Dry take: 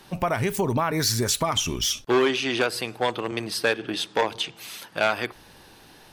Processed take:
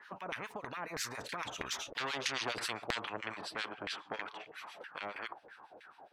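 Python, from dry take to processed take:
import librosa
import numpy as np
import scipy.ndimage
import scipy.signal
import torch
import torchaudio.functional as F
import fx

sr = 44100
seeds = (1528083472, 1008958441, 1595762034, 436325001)

y = fx.doppler_pass(x, sr, speed_mps=21, closest_m=6.9, pass_at_s=2.39)
y = fx.harmonic_tremolo(y, sr, hz=7.3, depth_pct=100, crossover_hz=1500.0)
y = fx.filter_lfo_bandpass(y, sr, shape='saw_down', hz=3.1, low_hz=480.0, high_hz=1900.0, q=5.5)
y = fx.spectral_comp(y, sr, ratio=4.0)
y = y * 10.0 ** (7.0 / 20.0)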